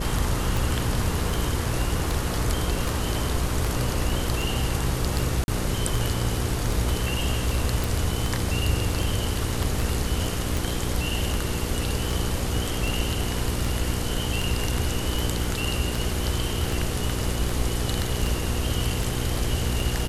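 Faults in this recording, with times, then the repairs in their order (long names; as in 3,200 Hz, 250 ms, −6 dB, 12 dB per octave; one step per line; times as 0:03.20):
mains hum 60 Hz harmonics 8 −30 dBFS
scratch tick 78 rpm
0:05.44–0:05.48: drop-out 41 ms
0:07.84: click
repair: click removal
hum removal 60 Hz, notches 8
repair the gap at 0:05.44, 41 ms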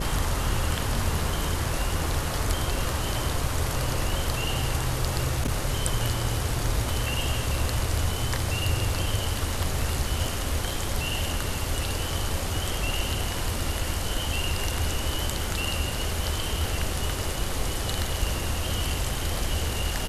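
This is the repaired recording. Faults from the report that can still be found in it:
none of them is left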